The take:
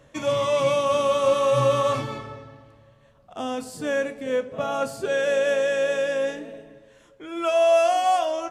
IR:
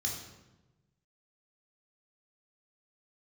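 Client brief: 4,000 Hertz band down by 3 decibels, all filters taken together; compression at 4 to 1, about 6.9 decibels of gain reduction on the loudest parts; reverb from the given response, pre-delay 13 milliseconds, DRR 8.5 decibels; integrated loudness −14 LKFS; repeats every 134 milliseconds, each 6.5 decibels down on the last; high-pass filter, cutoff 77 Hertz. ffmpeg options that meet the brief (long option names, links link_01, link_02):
-filter_complex "[0:a]highpass=77,equalizer=frequency=4000:width_type=o:gain=-4,acompressor=threshold=-24dB:ratio=4,aecho=1:1:134|268|402|536|670|804:0.473|0.222|0.105|0.0491|0.0231|0.0109,asplit=2[link_01][link_02];[1:a]atrim=start_sample=2205,adelay=13[link_03];[link_02][link_03]afir=irnorm=-1:irlink=0,volume=-11dB[link_04];[link_01][link_04]amix=inputs=2:normalize=0,volume=12.5dB"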